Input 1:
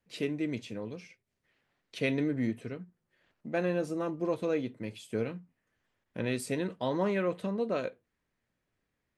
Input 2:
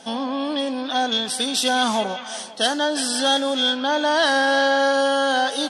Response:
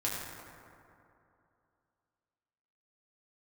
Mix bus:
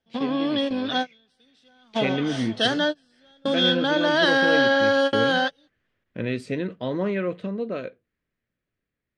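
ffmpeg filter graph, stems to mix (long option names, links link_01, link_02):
-filter_complex "[0:a]dynaudnorm=framelen=250:gausssize=13:maxgain=7dB,volume=-1.5dB,asplit=2[link_01][link_02];[1:a]volume=1.5dB[link_03];[link_02]apad=whole_len=251040[link_04];[link_03][link_04]sidechaingate=range=-36dB:threshold=-45dB:ratio=16:detection=peak[link_05];[link_01][link_05]amix=inputs=2:normalize=0,lowpass=3600,equalizer=frequency=880:width=2:gain=-8.5"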